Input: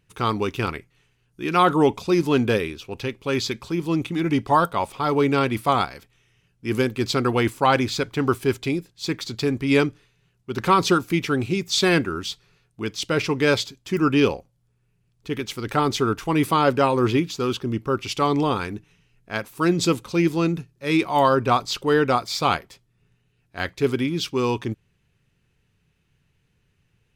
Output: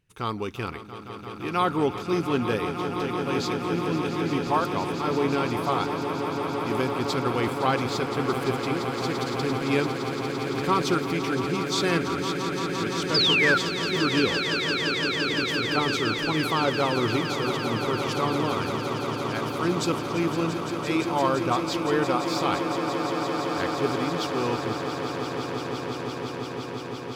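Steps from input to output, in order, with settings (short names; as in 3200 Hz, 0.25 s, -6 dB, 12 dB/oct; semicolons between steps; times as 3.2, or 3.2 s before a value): painted sound fall, 13.14–13.58, 1300–5200 Hz -15 dBFS; swelling echo 0.171 s, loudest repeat 8, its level -11 dB; gain -6.5 dB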